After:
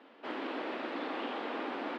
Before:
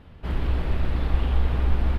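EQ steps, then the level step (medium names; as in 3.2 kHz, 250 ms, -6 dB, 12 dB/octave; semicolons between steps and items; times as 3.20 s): steep high-pass 260 Hz 48 dB/octave; distance through air 120 m; peaking EQ 400 Hz -4.5 dB 0.23 oct; 0.0 dB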